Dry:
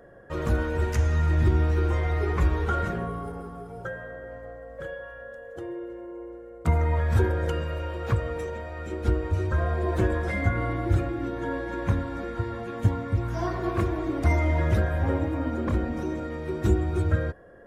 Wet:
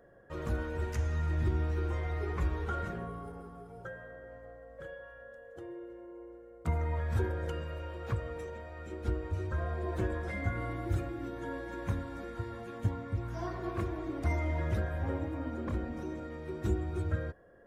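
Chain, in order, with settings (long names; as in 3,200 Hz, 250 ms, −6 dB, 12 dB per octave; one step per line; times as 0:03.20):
0:10.48–0:12.78: high-shelf EQ 6,500 Hz +9 dB
level −9 dB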